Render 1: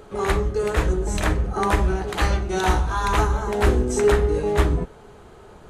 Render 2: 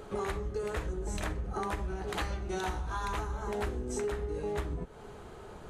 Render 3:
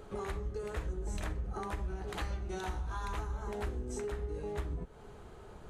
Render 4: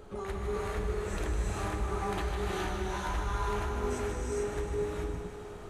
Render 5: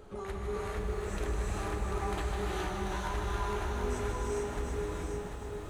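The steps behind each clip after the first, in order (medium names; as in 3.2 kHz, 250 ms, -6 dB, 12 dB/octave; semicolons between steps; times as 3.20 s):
compression 12:1, threshold -29 dBFS, peak gain reduction 17.5 dB; trim -2 dB
bass shelf 110 Hz +6 dB; trim -5.5 dB
thinning echo 154 ms, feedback 77%, high-pass 230 Hz, level -9 dB; gated-style reverb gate 460 ms rising, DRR -4 dB
bit-crushed delay 741 ms, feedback 35%, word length 10-bit, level -5.5 dB; trim -2 dB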